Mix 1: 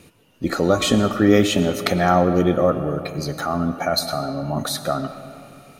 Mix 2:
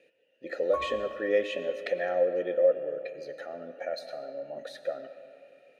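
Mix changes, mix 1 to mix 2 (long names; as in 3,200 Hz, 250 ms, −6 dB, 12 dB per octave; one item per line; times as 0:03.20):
speech: add formant filter e
master: add low-shelf EQ 190 Hz −11.5 dB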